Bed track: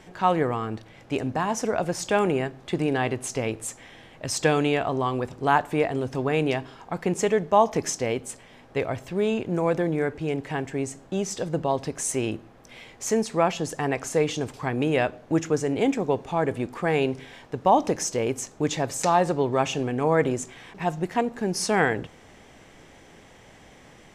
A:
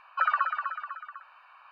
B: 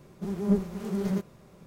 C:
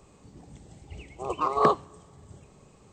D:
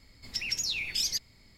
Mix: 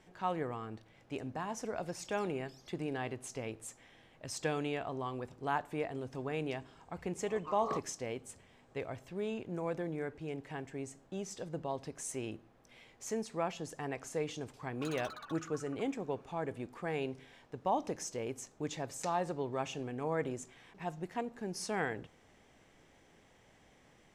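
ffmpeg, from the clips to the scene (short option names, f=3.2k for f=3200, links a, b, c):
-filter_complex "[0:a]volume=-13.5dB[a];[4:a]acompressor=threshold=-45dB:ratio=6:attack=3.2:release=140:knee=1:detection=peak[b];[1:a]aeval=exprs='0.0376*(abs(mod(val(0)/0.0376+3,4)-2)-1)':c=same[c];[b]atrim=end=1.57,asetpts=PTS-STARTPTS,volume=-16dB,afade=t=in:d=0.004:c=hsin,afade=t=out:st=1.566:d=0.004:c=hsin,adelay=1540[d];[3:a]atrim=end=2.92,asetpts=PTS-STARTPTS,volume=-17dB,afade=t=in:d=0.004:c=hsin,afade=t=out:st=2.916:d=0.004:c=hsin,adelay=6060[e];[c]atrim=end=1.71,asetpts=PTS-STARTPTS,volume=-14dB,afade=t=in:d=0.004:c=hsin,afade=t=out:st=1.706:d=0.004:c=hsin,adelay=14640[f];[a][d][e][f]amix=inputs=4:normalize=0"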